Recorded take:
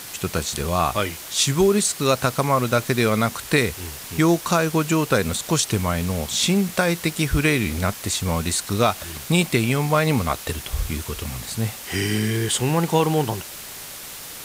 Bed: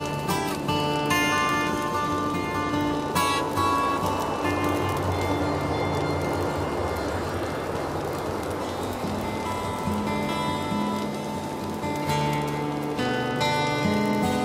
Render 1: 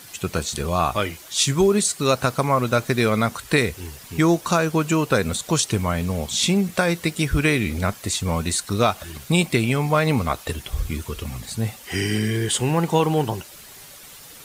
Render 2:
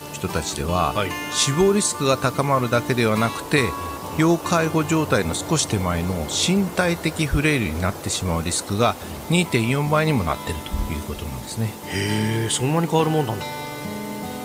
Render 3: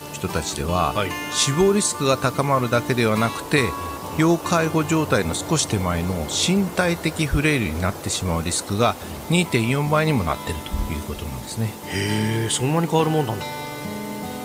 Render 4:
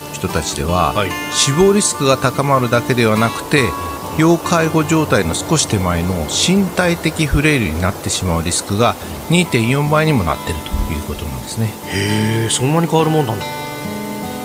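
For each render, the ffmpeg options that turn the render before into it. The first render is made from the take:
-af "afftdn=nr=9:nf=-37"
-filter_complex "[1:a]volume=0.447[s0];[0:a][s0]amix=inputs=2:normalize=0"
-af anull
-af "volume=2,alimiter=limit=0.891:level=0:latency=1"

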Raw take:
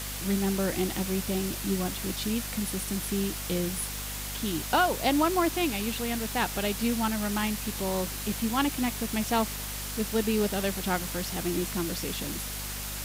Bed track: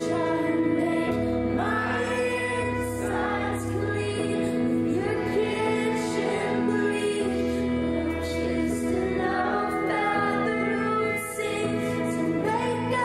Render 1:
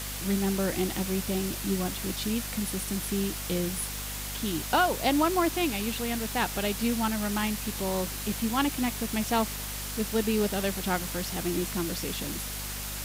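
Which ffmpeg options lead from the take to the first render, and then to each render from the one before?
-af anull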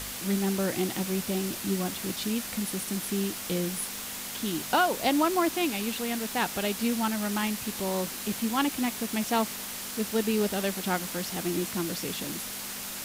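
-af "bandreject=f=50:t=h:w=4,bandreject=f=100:t=h:w=4,bandreject=f=150:t=h:w=4"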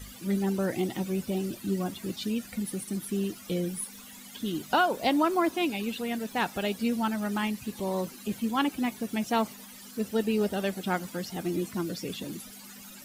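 -af "afftdn=nr=16:nf=-37"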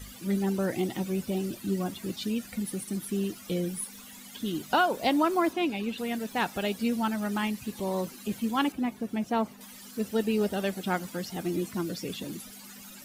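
-filter_complex "[0:a]asettb=1/sr,asplit=3[s0][s1][s2];[s0]atrim=end=5.534[s3];[s1]atrim=start=5.53:end=5.98,asetpts=PTS-STARTPTS,afade=t=in:d=0.004:c=qsin,afade=t=out:st=0.446:d=0.004:c=qsin,aemphasis=mode=reproduction:type=cd[s4];[s2]atrim=start=5.976[s5];[s3][s4]acrossfade=d=0.004:c1=hsin:c2=qsin[s6];[s6][s5]acrossfade=d=0.004:c1=qsin:c2=hsin,asettb=1/sr,asplit=3[s7][s8][s9];[s7]atrim=end=8.724[s10];[s8]atrim=start=8.72:end=9.61,asetpts=PTS-STARTPTS,afade=t=in:d=0.004:c=qsin,afade=t=out:st=0.886:d=0.004:c=qsin,highshelf=f=2100:g=-10.5[s11];[s9]atrim=start=9.606[s12];[s10][s11]acrossfade=d=0.004:c1=hsin:c2=qsin[s13];[s13][s12]acrossfade=d=0.004:c1=qsin:c2=hsin"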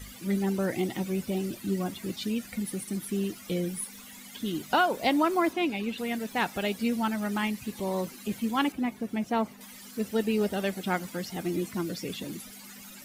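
-af "equalizer=f=2100:t=o:w=0.34:g=4"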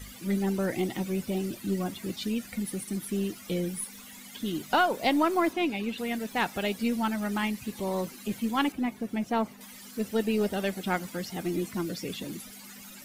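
-af "aeval=exprs='0.251*(cos(1*acos(clip(val(0)/0.251,-1,1)))-cos(1*PI/2))+0.0158*(cos(2*acos(clip(val(0)/0.251,-1,1)))-cos(2*PI/2))+0.0126*(cos(4*acos(clip(val(0)/0.251,-1,1)))-cos(4*PI/2))':c=same"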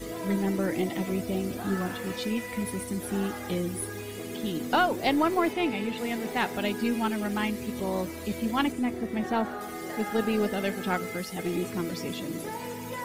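-filter_complex "[1:a]volume=0.282[s0];[0:a][s0]amix=inputs=2:normalize=0"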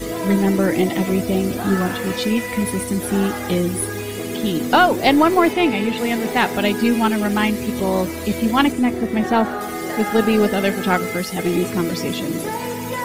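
-af "volume=3.35,alimiter=limit=0.708:level=0:latency=1"

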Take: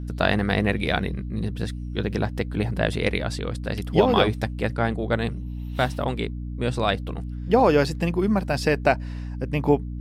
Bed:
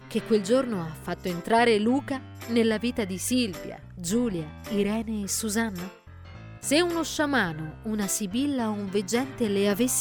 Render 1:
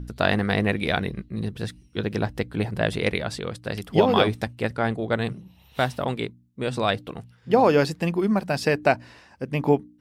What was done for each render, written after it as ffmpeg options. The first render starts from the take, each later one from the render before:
-af "bandreject=f=60:t=h:w=4,bandreject=f=120:t=h:w=4,bandreject=f=180:t=h:w=4,bandreject=f=240:t=h:w=4,bandreject=f=300:t=h:w=4"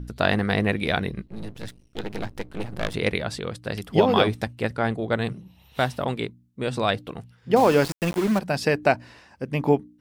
-filter_complex "[0:a]asettb=1/sr,asplit=3[s0][s1][s2];[s0]atrim=end=1.264[s3];[s1]atrim=start=1.26:end=2.94,asetpts=PTS-STARTPTS,afade=t=in:d=0.004:c=qsin,afade=t=out:st=1.676:d=0.004:c=qsin,aeval=exprs='max(val(0),0)':c=same[s4];[s2]atrim=start=2.936[s5];[s3][s4]acrossfade=d=0.004:c1=hsin:c2=qsin[s6];[s6][s5]acrossfade=d=0.004:c1=qsin:c2=hsin,asettb=1/sr,asplit=3[s7][s8][s9];[s7]atrim=end=7.564[s10];[s8]atrim=start=7.56:end=8.39,asetpts=PTS-STARTPTS,afade=t=in:d=0.004:c=qsin,afade=t=out:st=0.826:d=0.004:c=qsin,aeval=exprs='val(0)*gte(abs(val(0)),0.0447)':c=same[s11];[s9]atrim=start=8.386[s12];[s10][s11]acrossfade=d=0.004:c1=hsin:c2=qsin[s13];[s13][s12]acrossfade=d=0.004:c1=qsin:c2=hsin"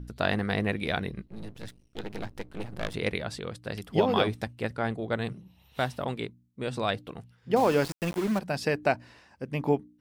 -af "volume=0.531"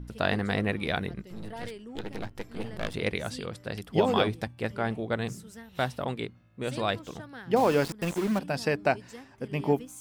-filter_complex "[1:a]volume=0.0944[s0];[0:a][s0]amix=inputs=2:normalize=0"

